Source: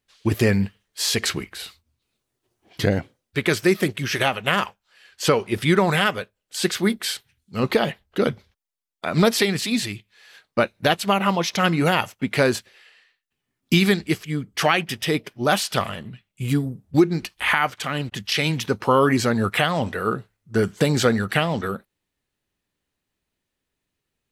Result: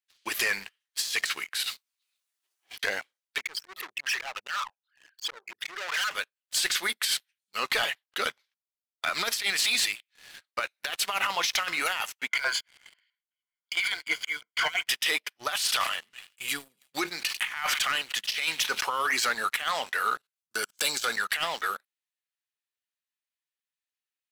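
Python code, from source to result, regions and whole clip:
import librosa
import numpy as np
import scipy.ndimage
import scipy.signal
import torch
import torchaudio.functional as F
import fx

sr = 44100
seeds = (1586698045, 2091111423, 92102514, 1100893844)

y = fx.chain(x, sr, fx.over_compress(threshold_db=-41.0, ratio=-0.5),
    fx.high_shelf(hz=4700.0, db=3.0), at=(1.63, 2.83))
y = fx.chain(y, sr, fx.envelope_sharpen(power=3.0),
    fx.auto_swell(attack_ms=146.0),
    fx.tube_stage(drive_db=29.0, bias=0.4), at=(3.38, 6.11))
y = fx.chain(y, sr, fx.ripple_eq(per_octave=1.8, db=16),
    fx.filter_lfo_bandpass(shape='saw_up', hz=6.1, low_hz=730.0, high_hz=3300.0, q=0.82), at=(12.28, 14.86))
y = fx.chain(y, sr, fx.echo_wet_highpass(ms=97, feedback_pct=44, hz=2700.0, wet_db=-21),
    fx.sustainer(db_per_s=120.0), at=(15.48, 19.27))
y = fx.chain(y, sr, fx.bass_treble(bass_db=2, treble_db=7),
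    fx.notch(hz=1900.0, q=6.3),
    fx.level_steps(step_db=20), at=(20.17, 21.17))
y = scipy.signal.sosfilt(scipy.signal.butter(2, 1400.0, 'highpass', fs=sr, output='sos'), y)
y = fx.over_compress(y, sr, threshold_db=-28.0, ratio=-0.5)
y = fx.leveller(y, sr, passes=3)
y = y * librosa.db_to_amplitude(-8.0)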